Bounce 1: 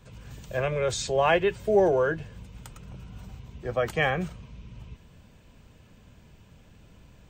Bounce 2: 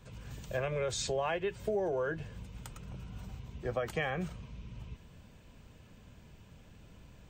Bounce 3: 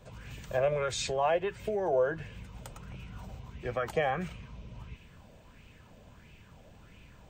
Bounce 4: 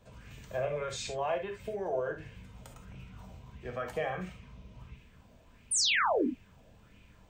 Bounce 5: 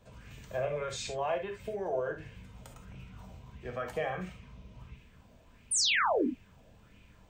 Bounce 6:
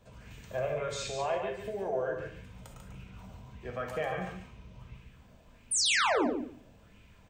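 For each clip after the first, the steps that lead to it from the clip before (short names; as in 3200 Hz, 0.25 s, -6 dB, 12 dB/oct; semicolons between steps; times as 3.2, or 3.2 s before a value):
compressor 6:1, threshold -28 dBFS, peak gain reduction 11.5 dB; gain -2 dB
LFO bell 1.5 Hz 580–2600 Hz +11 dB
crackle 82/s -60 dBFS; painted sound fall, 5.71–6.27, 230–10000 Hz -23 dBFS; non-linear reverb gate 90 ms flat, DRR 3.5 dB; gain -6 dB
nothing audible
feedback echo 0.143 s, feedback 16%, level -6 dB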